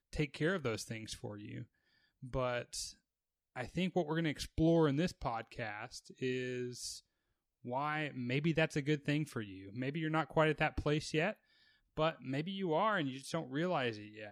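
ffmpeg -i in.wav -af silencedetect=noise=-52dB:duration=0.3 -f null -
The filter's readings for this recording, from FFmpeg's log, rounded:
silence_start: 1.64
silence_end: 2.23 | silence_duration: 0.59
silence_start: 2.93
silence_end: 3.56 | silence_duration: 0.63
silence_start: 6.99
silence_end: 7.65 | silence_duration: 0.65
silence_start: 11.33
silence_end: 11.97 | silence_duration: 0.64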